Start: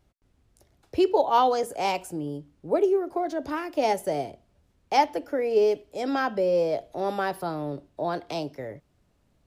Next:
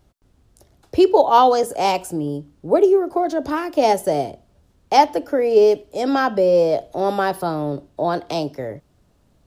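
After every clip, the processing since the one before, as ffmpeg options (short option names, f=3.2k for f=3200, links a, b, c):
-af "equalizer=f=2.2k:t=o:w=0.74:g=-4.5,volume=8dB"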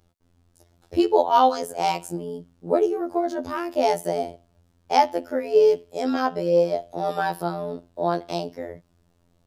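-af "afftfilt=real='hypot(re,im)*cos(PI*b)':imag='0':win_size=2048:overlap=0.75,volume=-1.5dB"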